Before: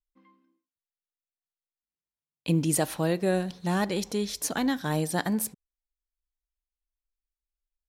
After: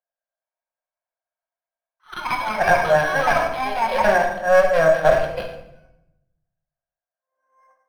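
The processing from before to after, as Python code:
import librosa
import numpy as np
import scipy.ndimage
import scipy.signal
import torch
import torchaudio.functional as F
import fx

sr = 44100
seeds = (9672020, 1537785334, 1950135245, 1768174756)

y = np.flip(x).copy()
y = fx.env_lowpass(y, sr, base_hz=1300.0, full_db=-22.0)
y = scipy.signal.sosfilt(scipy.signal.ellip(4, 1.0, 40, 510.0, 'highpass', fs=sr, output='sos'), y)
y = fx.cheby_harmonics(y, sr, harmonics=(5, 6), levels_db=(-12, -6), full_scale_db=-14.0)
y = fx.small_body(y, sr, hz=(670.0, 1600.0), ring_ms=30, db=16)
y = fx.echo_pitch(y, sr, ms=413, semitones=6, count=2, db_per_echo=-6.0)
y = fx.air_absorb(y, sr, metres=120.0)
y = fx.echo_feedback(y, sr, ms=119, feedback_pct=30, wet_db=-18.0)
y = fx.room_shoebox(y, sr, seeds[0], volume_m3=260.0, walls='mixed', distance_m=0.98)
y = np.interp(np.arange(len(y)), np.arange(len(y))[::6], y[::6])
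y = y * 10.0 ** (-1.5 / 20.0)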